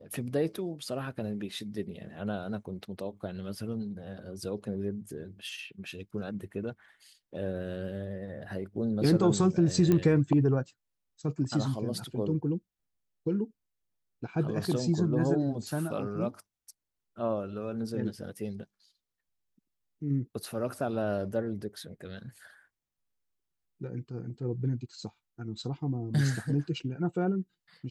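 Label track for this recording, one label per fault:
9.920000	9.920000	pop -14 dBFS

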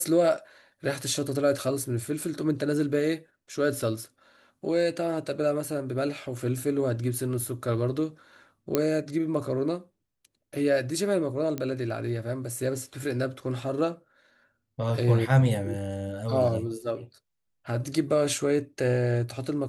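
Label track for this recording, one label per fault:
8.750000	8.750000	pop -9 dBFS
11.580000	11.580000	pop -17 dBFS

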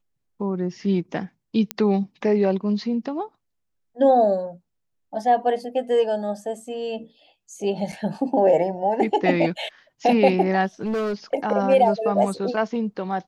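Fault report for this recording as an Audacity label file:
1.710000	1.710000	pop -8 dBFS
7.920000	7.930000	dropout 5.9 ms
10.810000	11.140000	clipped -21.5 dBFS

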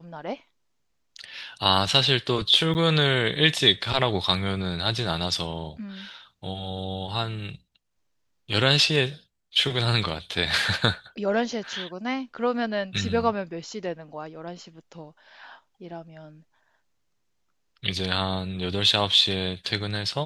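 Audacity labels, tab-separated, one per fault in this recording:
2.740000	2.750000	dropout 9.3 ms

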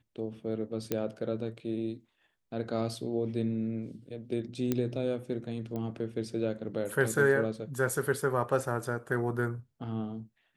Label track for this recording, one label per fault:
0.920000	0.920000	pop -15 dBFS
4.720000	4.720000	pop -15 dBFS
5.760000	5.760000	pop -25 dBFS

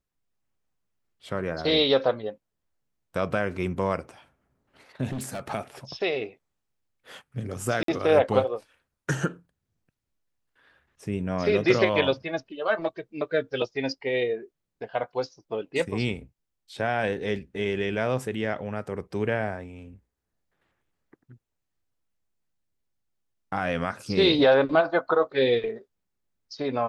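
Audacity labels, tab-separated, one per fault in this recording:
5.120000	5.520000	clipped -28.5 dBFS
7.830000	7.880000	dropout 53 ms

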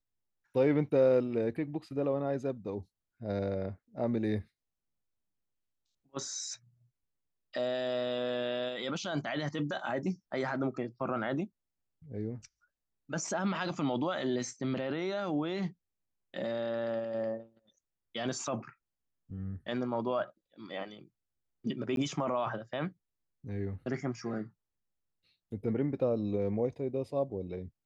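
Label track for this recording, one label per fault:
21.960000	21.970000	dropout

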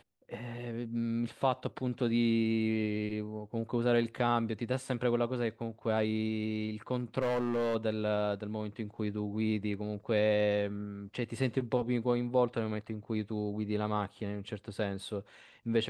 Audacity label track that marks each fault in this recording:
7.210000	7.760000	clipped -27 dBFS

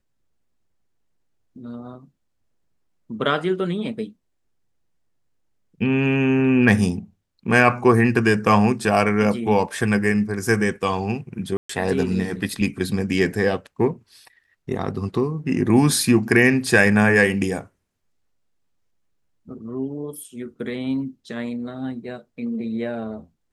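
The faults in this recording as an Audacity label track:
11.570000	11.690000	dropout 124 ms

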